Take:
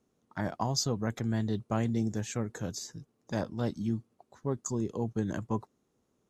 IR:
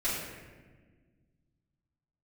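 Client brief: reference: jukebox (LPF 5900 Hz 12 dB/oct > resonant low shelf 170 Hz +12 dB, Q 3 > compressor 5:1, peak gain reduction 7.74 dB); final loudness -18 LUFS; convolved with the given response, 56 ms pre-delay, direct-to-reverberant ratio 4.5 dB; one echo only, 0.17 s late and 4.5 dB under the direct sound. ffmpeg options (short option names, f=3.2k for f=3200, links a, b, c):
-filter_complex "[0:a]aecho=1:1:170:0.596,asplit=2[a][b];[1:a]atrim=start_sample=2205,adelay=56[c];[b][c]afir=irnorm=-1:irlink=0,volume=-12.5dB[d];[a][d]amix=inputs=2:normalize=0,lowpass=5.9k,lowshelf=f=170:t=q:w=3:g=12,acompressor=threshold=-16dB:ratio=5,volume=3dB"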